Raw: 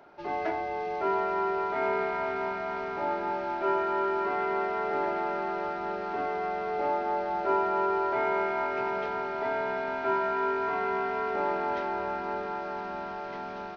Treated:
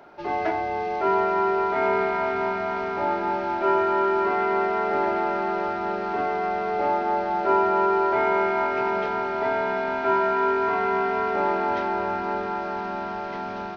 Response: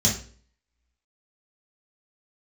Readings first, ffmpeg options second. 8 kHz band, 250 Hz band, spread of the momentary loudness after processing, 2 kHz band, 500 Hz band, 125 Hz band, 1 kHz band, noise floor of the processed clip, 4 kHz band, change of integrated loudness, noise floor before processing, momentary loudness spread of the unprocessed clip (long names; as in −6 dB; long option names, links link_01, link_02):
can't be measured, +7.0 dB, 6 LU, +5.5 dB, +6.0 dB, +7.5 dB, +6.0 dB, −31 dBFS, +5.5 dB, +6.0 dB, −37 dBFS, 6 LU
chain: -filter_complex "[0:a]asplit=2[link_01][link_02];[1:a]atrim=start_sample=2205,adelay=30[link_03];[link_02][link_03]afir=irnorm=-1:irlink=0,volume=-30dB[link_04];[link_01][link_04]amix=inputs=2:normalize=0,volume=5.5dB"